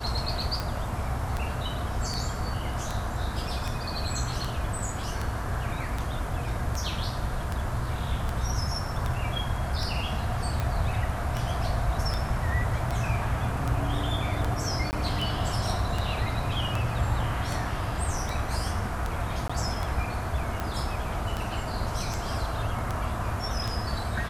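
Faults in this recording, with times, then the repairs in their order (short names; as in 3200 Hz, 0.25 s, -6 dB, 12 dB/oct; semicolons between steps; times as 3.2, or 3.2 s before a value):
tick 78 rpm
14.91–14.93 gap 19 ms
19.48–19.5 gap 15 ms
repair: de-click; interpolate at 14.91, 19 ms; interpolate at 19.48, 15 ms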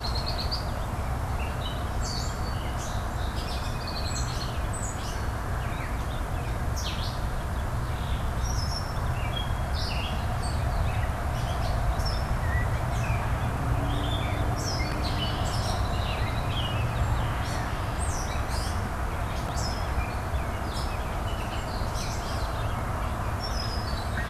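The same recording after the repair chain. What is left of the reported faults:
none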